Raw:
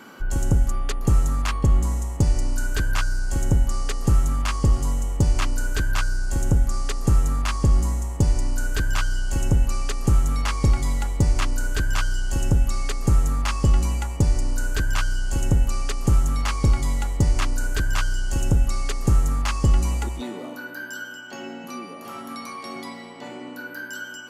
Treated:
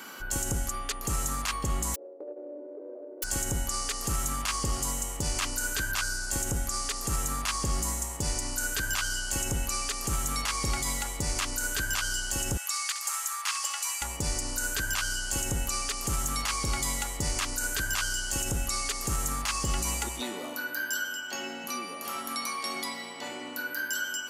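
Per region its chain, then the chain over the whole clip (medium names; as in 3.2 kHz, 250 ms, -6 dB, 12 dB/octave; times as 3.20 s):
1.94–3.22 s: formants flattened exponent 0.1 + elliptic band-pass 290–580 Hz, stop band 80 dB + compression 2:1, threshold -37 dBFS
12.57–14.02 s: high-pass 960 Hz 24 dB/octave + flutter echo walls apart 11.5 m, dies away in 0.24 s
whole clip: tilt EQ +3 dB/octave; peak limiter -18.5 dBFS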